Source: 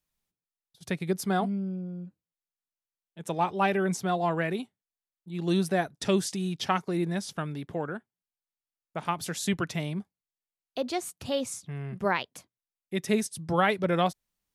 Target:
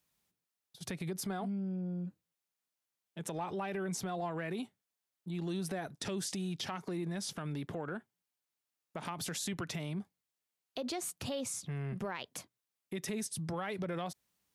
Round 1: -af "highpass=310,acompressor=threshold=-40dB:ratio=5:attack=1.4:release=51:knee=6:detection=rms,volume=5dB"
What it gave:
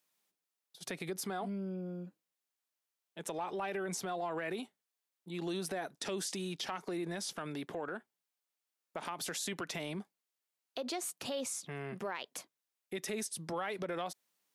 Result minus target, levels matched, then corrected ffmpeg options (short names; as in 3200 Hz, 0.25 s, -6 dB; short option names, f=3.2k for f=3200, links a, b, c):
125 Hz band -6.0 dB
-af "highpass=82,acompressor=threshold=-40dB:ratio=5:attack=1.4:release=51:knee=6:detection=rms,volume=5dB"